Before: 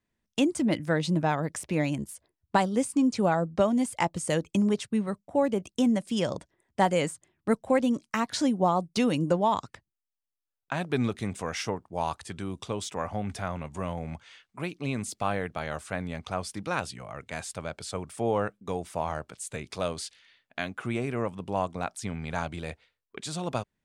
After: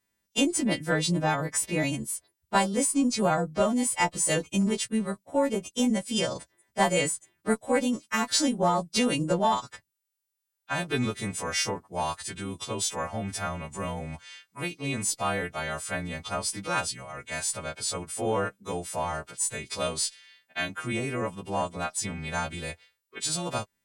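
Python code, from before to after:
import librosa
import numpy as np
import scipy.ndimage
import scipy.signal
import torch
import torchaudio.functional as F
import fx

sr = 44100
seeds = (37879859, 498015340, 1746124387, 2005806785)

y = fx.freq_snap(x, sr, grid_st=2)
y = fx.cheby_harmonics(y, sr, harmonics=(4,), levels_db=(-27,), full_scale_db=-8.5)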